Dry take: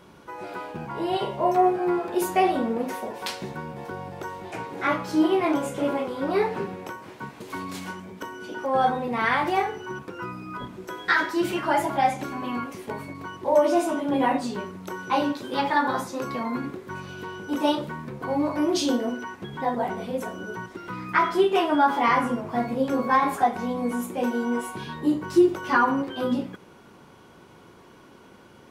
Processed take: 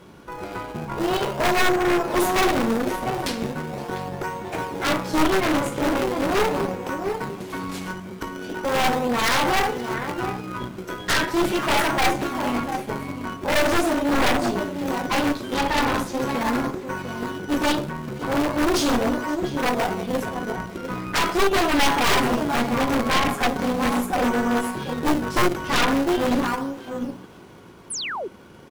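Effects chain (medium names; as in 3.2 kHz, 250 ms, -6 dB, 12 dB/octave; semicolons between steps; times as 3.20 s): echo from a far wall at 120 m, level -9 dB; in parallel at -7 dB: decimation with a swept rate 28×, swing 160% 0.4 Hz; on the sum: Chebyshev shaper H 6 -13 dB, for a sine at -4 dBFS; wavefolder -15.5 dBFS; on a send: feedback echo behind a high-pass 522 ms, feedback 36%, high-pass 1.6 kHz, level -21 dB; on the sum: painted sound fall, 27.90–28.28 s, 330–11000 Hz -31 dBFS; trim +2 dB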